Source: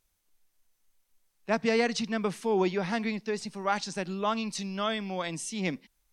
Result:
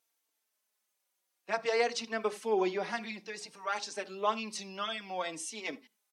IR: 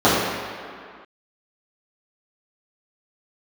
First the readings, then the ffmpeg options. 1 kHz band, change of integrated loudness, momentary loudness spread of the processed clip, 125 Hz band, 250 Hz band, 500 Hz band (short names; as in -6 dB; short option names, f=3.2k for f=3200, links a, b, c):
-2.5 dB, -4.0 dB, 10 LU, under -15 dB, -10.5 dB, -3.0 dB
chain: -filter_complex "[0:a]highpass=390,asplit=2[a][b];[1:a]atrim=start_sample=2205,atrim=end_sample=4410[c];[b][c]afir=irnorm=-1:irlink=0,volume=-38.5dB[d];[a][d]amix=inputs=2:normalize=0,asplit=2[e][f];[f]adelay=3.9,afreqshift=-0.57[g];[e][g]amix=inputs=2:normalize=1"